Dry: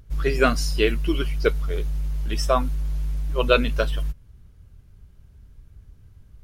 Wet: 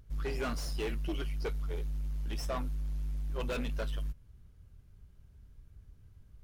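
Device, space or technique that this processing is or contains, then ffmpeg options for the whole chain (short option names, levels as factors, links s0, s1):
saturation between pre-emphasis and de-emphasis: -af "highshelf=f=2100:g=10.5,asoftclip=type=tanh:threshold=0.0794,highshelf=f=2100:g=-10.5,volume=0.422"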